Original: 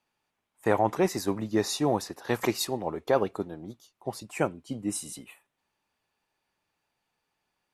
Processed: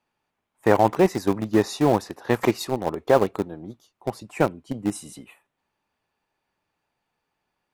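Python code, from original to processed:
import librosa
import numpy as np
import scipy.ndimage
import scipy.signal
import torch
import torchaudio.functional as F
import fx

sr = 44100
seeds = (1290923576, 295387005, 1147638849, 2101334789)

p1 = fx.high_shelf(x, sr, hz=3000.0, db=-8.0)
p2 = np.where(np.abs(p1) >= 10.0 ** (-25.0 / 20.0), p1, 0.0)
p3 = p1 + F.gain(torch.from_numpy(p2), -6.0).numpy()
y = F.gain(torch.from_numpy(p3), 3.5).numpy()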